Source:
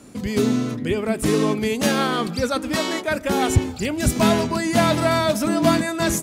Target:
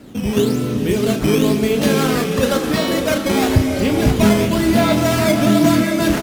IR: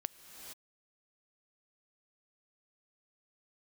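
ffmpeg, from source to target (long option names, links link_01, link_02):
-filter_complex "[0:a]equalizer=frequency=1000:width_type=o:width=1:gain=-6,equalizer=frequency=2000:width_type=o:width=1:gain=-3,equalizer=frequency=8000:width_type=o:width=1:gain=-10,asplit=2[link_01][link_02];[link_02]acompressor=threshold=-21dB:ratio=6,volume=1dB[link_03];[link_01][link_03]amix=inputs=2:normalize=0,acrusher=samples=9:mix=1:aa=0.000001:lfo=1:lforange=14.4:lforate=0.98,asplit=2[link_04][link_05];[link_05]adelay=34,volume=-8dB[link_06];[link_04][link_06]amix=inputs=2:normalize=0[link_07];[1:a]atrim=start_sample=2205,asetrate=30429,aresample=44100[link_08];[link_07][link_08]afir=irnorm=-1:irlink=0"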